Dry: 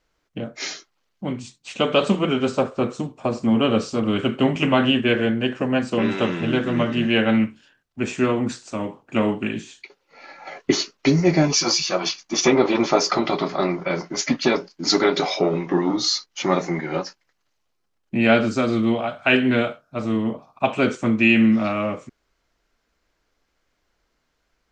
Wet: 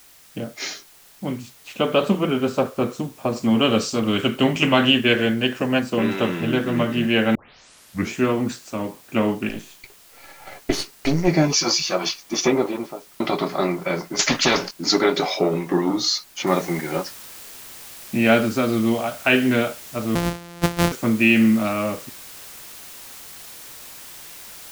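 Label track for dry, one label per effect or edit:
1.410000	2.510000	high shelf 3400 Hz -6.5 dB
3.360000	5.800000	high shelf 2800 Hz +10 dB
7.350000	7.350000	tape start 0.81 s
9.490000	11.280000	half-wave gain negative side -12 dB
12.230000	13.200000	studio fade out
14.190000	14.710000	spectral compressor 2:1
16.470000	16.470000	noise floor step -50 dB -40 dB
20.150000	20.920000	sample sorter in blocks of 256 samples

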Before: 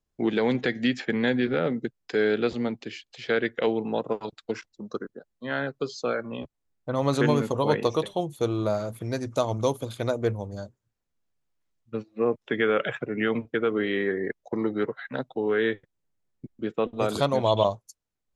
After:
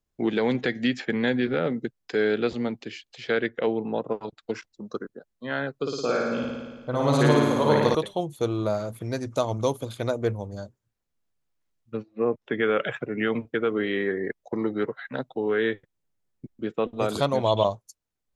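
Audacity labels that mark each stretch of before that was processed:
3.460000	4.430000	high shelf 2400 Hz -8 dB
5.780000	7.950000	flutter echo walls apart 9.6 m, dies away in 1.4 s
11.970000	12.630000	high shelf 3800 Hz -10 dB

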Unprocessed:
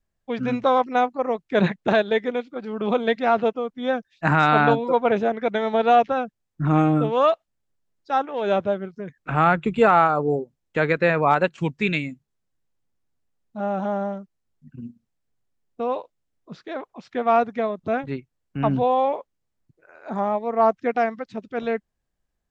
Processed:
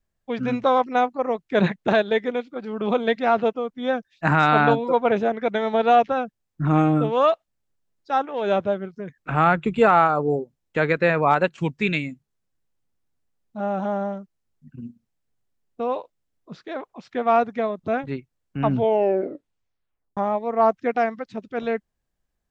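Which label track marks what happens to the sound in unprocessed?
18.700000	18.700000	tape stop 1.47 s

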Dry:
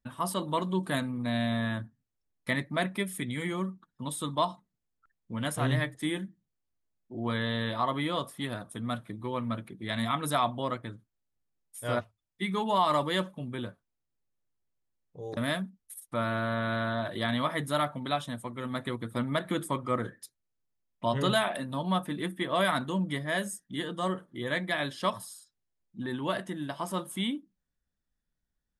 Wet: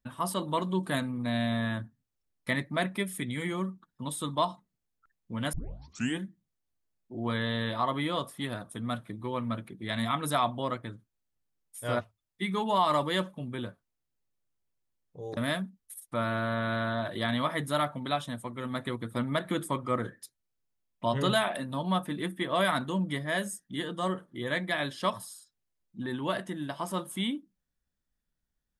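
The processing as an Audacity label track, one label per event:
5.530000	5.530000	tape start 0.65 s

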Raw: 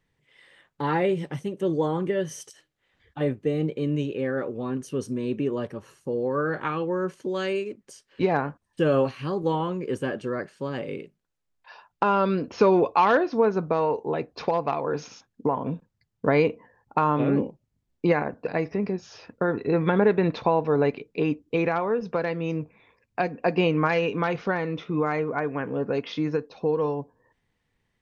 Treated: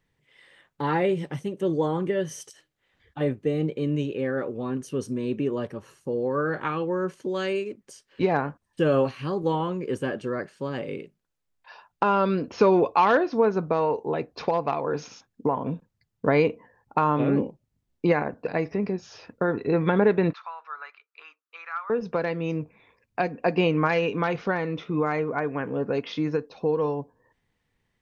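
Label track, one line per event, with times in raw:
20.330000	21.900000	ladder high-pass 1200 Hz, resonance 75%

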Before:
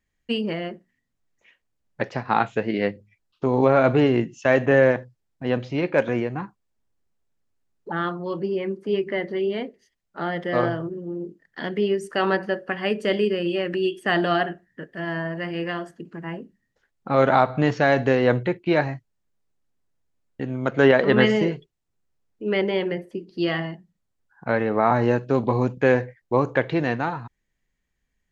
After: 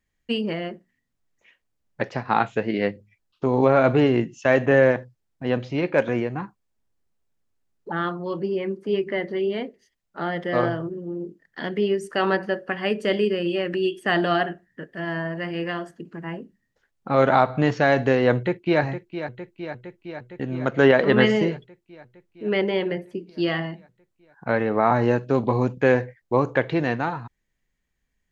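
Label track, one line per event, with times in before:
18.360000	18.820000	echo throw 0.46 s, feedback 75%, level -10.5 dB

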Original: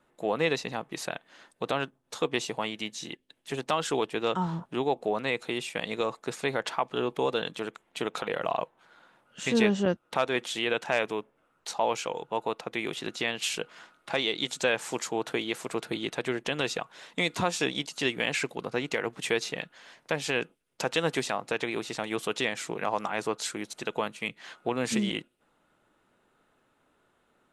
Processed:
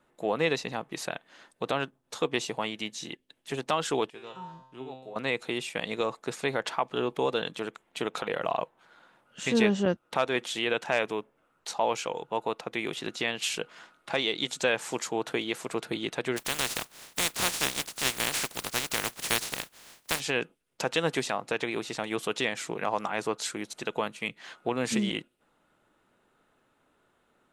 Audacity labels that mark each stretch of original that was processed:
4.100000	5.160000	resonator 130 Hz, decay 0.73 s, mix 90%
16.360000	20.190000	spectral contrast lowered exponent 0.2

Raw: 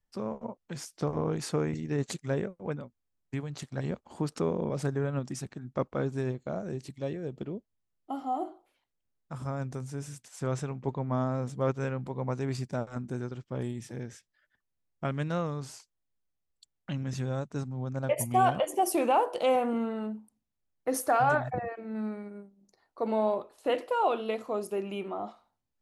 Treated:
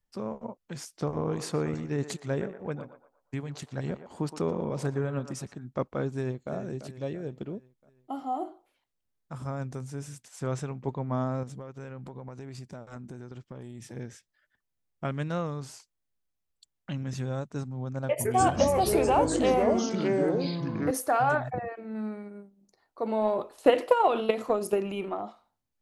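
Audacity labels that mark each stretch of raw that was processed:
1.170000	5.550000	narrowing echo 0.118 s, feedback 41%, level -8 dB
6.130000	6.530000	echo throw 0.34 s, feedback 50%, level -10.5 dB
11.430000	13.960000	compressor 16:1, threshold -37 dBFS
18.080000	20.910000	echoes that change speed 0.156 s, each echo -5 st, echoes 3
23.210000	25.210000	transient shaper attack +11 dB, sustain +7 dB

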